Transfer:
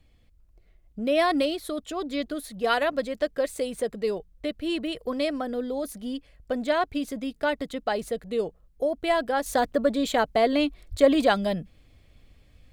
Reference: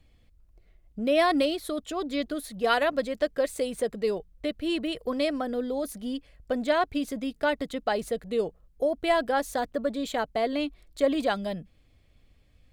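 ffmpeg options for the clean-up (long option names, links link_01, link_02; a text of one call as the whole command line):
ffmpeg -i in.wav -filter_complex "[0:a]asplit=3[link_01][link_02][link_03];[link_01]afade=type=out:start_time=10.9:duration=0.02[link_04];[link_02]highpass=frequency=140:width=0.5412,highpass=frequency=140:width=1.3066,afade=type=in:start_time=10.9:duration=0.02,afade=type=out:start_time=11.02:duration=0.02[link_05];[link_03]afade=type=in:start_time=11.02:duration=0.02[link_06];[link_04][link_05][link_06]amix=inputs=3:normalize=0,asetnsamples=nb_out_samples=441:pad=0,asendcmd='9.46 volume volume -5.5dB',volume=0dB" out.wav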